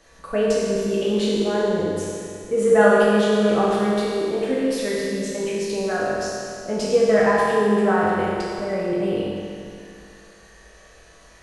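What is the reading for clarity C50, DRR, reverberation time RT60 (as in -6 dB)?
-2.5 dB, -7.5 dB, 2.4 s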